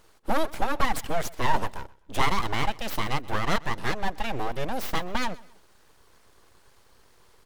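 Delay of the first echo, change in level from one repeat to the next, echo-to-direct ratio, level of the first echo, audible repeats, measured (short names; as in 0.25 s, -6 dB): 0.128 s, -9.5 dB, -21.5 dB, -22.0 dB, 2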